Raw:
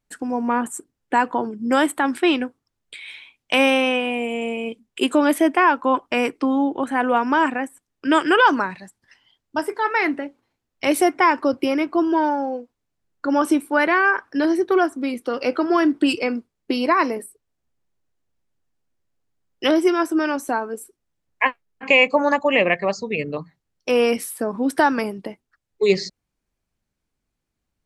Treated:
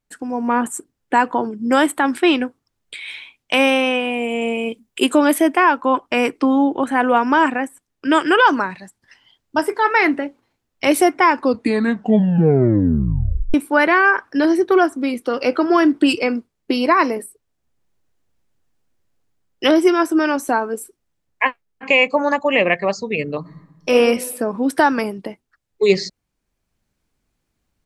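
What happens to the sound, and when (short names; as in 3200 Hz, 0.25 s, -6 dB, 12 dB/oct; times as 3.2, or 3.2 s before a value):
4.55–5.76 high shelf 10000 Hz +8.5 dB
11.31 tape stop 2.23 s
23.4–23.93 reverb throw, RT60 1.1 s, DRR -0.5 dB
whole clip: AGC gain up to 8 dB; gain -1 dB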